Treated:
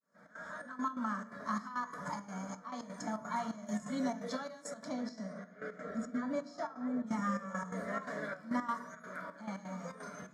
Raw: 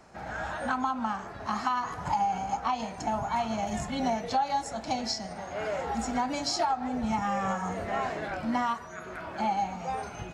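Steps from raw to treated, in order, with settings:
fade in at the beginning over 0.90 s
0:04.87–0:07.06: low-pass filter 2,000 Hz → 1,200 Hz 6 dB per octave
0:05.33–0:06.20: healed spectral selection 490–1,200 Hz before
high-pass filter 95 Hz 24 dB per octave
phaser with its sweep stopped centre 530 Hz, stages 8
tuned comb filter 570 Hz, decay 0.56 s, mix 80%
gate pattern "xxx.xxx..x." 171 BPM −12 dB
convolution reverb RT60 0.70 s, pre-delay 3 ms, DRR 13 dB
level +10 dB

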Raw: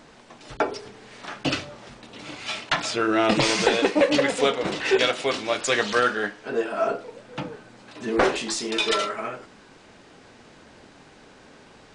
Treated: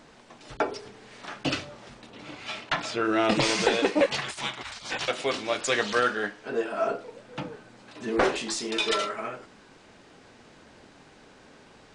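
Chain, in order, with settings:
0:02.09–0:03.04: high-shelf EQ 4,100 Hz → 5,600 Hz −8.5 dB
0:04.06–0:05.08: gate on every frequency bin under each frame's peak −15 dB weak
level −3 dB

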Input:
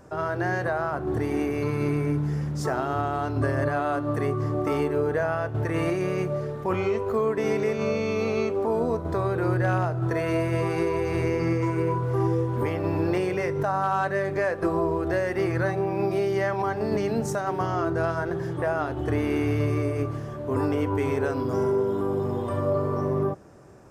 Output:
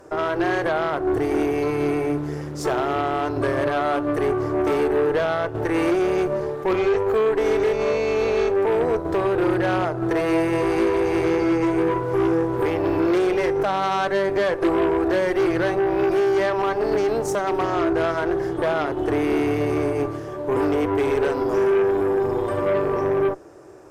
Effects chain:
low shelf with overshoot 270 Hz −6.5 dB, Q 3
harmonic generator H 5 −19 dB, 8 −20 dB, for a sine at −10.5 dBFS

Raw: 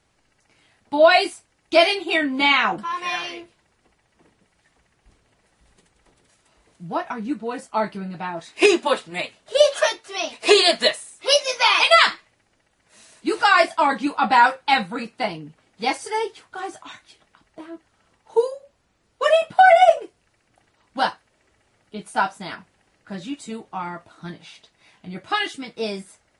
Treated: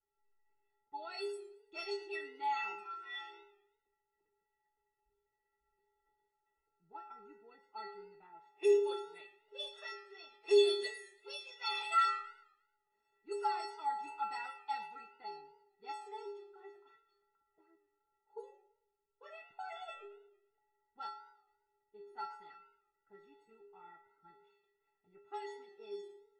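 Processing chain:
stiff-string resonator 400 Hz, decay 0.81 s, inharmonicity 0.03
low-pass that shuts in the quiet parts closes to 1,500 Hz, open at −37 dBFS
feedback echo with a swinging delay time 111 ms, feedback 42%, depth 141 cents, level −20 dB

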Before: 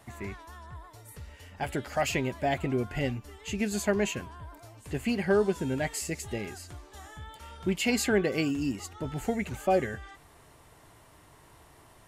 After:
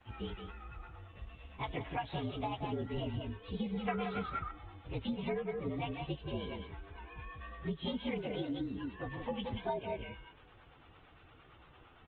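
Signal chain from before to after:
partials spread apart or drawn together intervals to 118%
0:00.60–0:01.12: double-tracking delay 32 ms −9.5 dB
0:08.39–0:09.53: low-shelf EQ 400 Hz −4.5 dB
bit reduction 10 bits
on a send: single-tap delay 174 ms −7 dB
on the sum: downsampling to 8,000 Hz
two-band tremolo in antiphase 8.8 Hz, depth 50%, crossover 510 Hz
downward compressor 16 to 1, threshold −35 dBFS, peak gain reduction 14 dB
0:03.88–0:04.51: parametric band 1,400 Hz +14.5 dB 0.83 octaves
level +2 dB
Opus 20 kbit/s 48,000 Hz

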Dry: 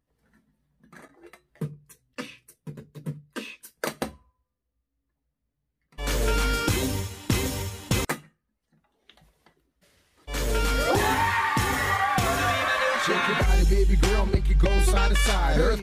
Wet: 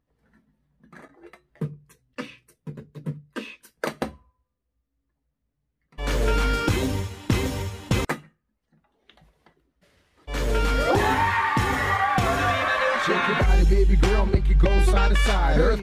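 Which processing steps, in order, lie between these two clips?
high-shelf EQ 4,900 Hz −11 dB
level +2.5 dB

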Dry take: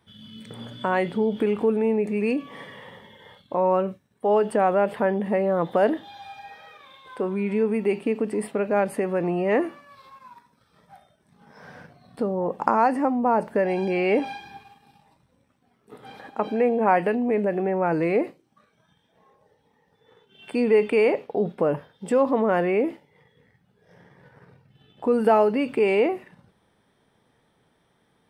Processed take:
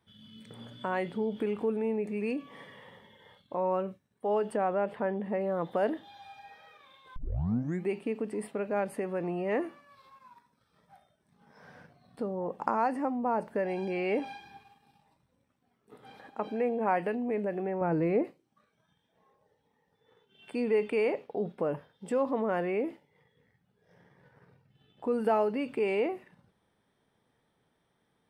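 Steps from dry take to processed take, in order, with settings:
0:04.57–0:05.41: low-pass filter 3,100 Hz 6 dB per octave
0:07.16: tape start 0.74 s
0:17.81–0:18.25: spectral tilt −2.5 dB per octave
level −8.5 dB

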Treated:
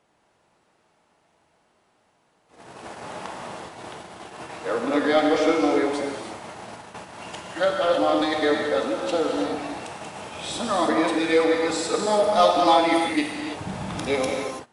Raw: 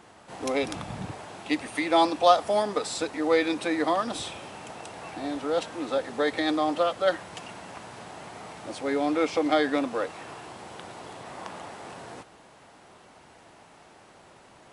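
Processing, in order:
played backwards from end to start
in parallel at −3 dB: soft clipping −18 dBFS, distortion −13 dB
on the sum: reverb whose tail is shaped and stops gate 360 ms flat, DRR 0 dB
noise gate −34 dBFS, range −17 dB
level −2.5 dB

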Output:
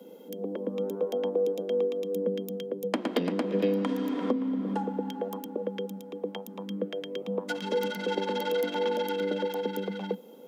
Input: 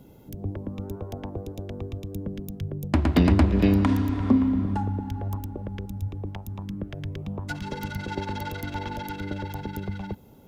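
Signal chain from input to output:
Butterworth high-pass 180 Hz 96 dB per octave
downward compressor 12 to 1, threshold −26 dBFS, peak gain reduction 12.5 dB
hollow resonant body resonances 490/3,200 Hz, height 18 dB, ringing for 90 ms

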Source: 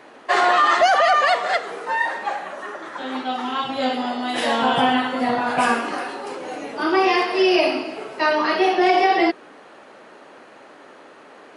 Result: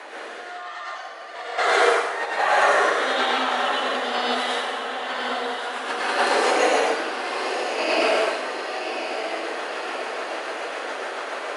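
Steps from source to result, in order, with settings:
high-pass filter 590 Hz 12 dB per octave
brickwall limiter −16.5 dBFS, peak gain reduction 9.5 dB
compressor whose output falls as the input rises −33 dBFS, ratio −0.5
rotating-speaker cabinet horn 1.1 Hz, later 7 Hz, at 0:04.54
feedback delay with all-pass diffusion 1,095 ms, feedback 58%, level −8 dB
dense smooth reverb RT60 1.1 s, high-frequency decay 0.95×, pre-delay 85 ms, DRR −5 dB
level +5.5 dB

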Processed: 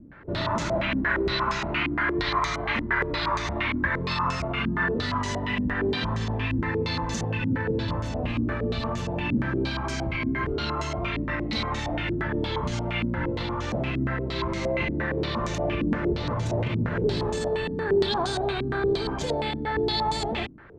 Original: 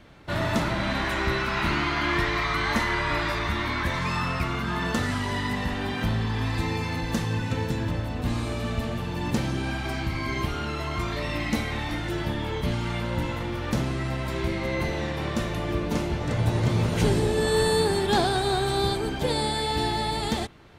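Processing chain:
notch filter 770 Hz, Q 12
brickwall limiter −20.5 dBFS, peak gain reduction 11 dB
low-pass on a step sequencer 8.6 Hz 270–6,600 Hz

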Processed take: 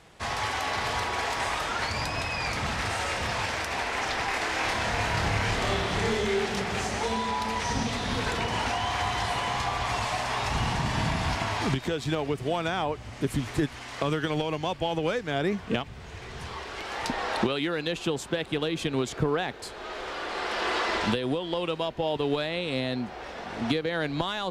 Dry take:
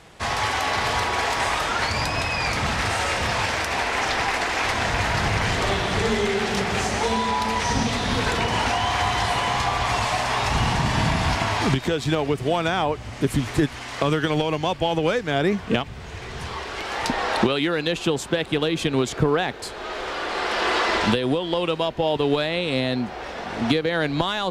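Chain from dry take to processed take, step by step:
0:04.28–0:06.46: flutter between parallel walls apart 4.8 metres, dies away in 0.3 s
level −6 dB

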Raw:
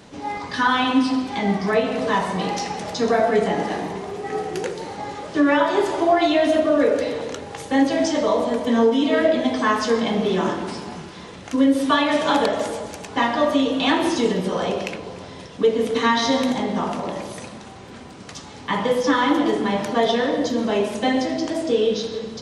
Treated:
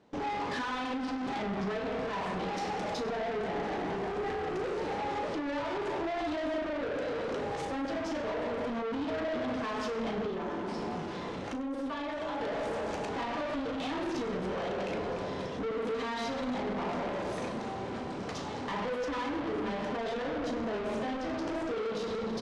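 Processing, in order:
noise gate with hold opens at −32 dBFS
parametric band 500 Hz +7.5 dB 2.8 octaves
brickwall limiter −18 dBFS, peak gain reduction 18 dB
0:10.26–0:12.41: downward compressor 2 to 1, threshold −32 dBFS, peak gain reduction 6.5 dB
tube saturation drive 32 dB, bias 0.35
high-frequency loss of the air 74 metres
double-tracking delay 36 ms −10.5 dB
repeating echo 98 ms, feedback 43%, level −16 dB

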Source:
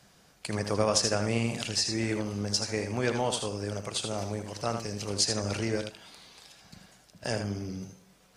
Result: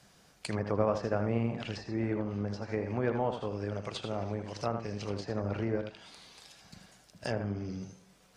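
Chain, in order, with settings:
treble cut that deepens with the level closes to 1,400 Hz, closed at −26.5 dBFS
level −1.5 dB

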